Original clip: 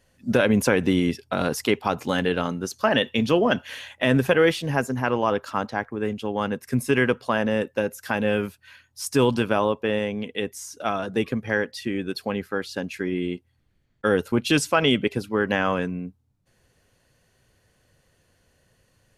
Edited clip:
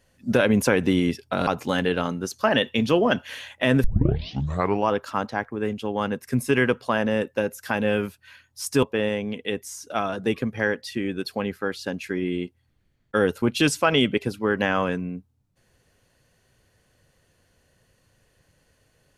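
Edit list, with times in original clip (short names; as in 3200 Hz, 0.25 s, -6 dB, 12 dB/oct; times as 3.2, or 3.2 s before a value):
1.47–1.87 cut
4.24 tape start 1.05 s
9.23–9.73 cut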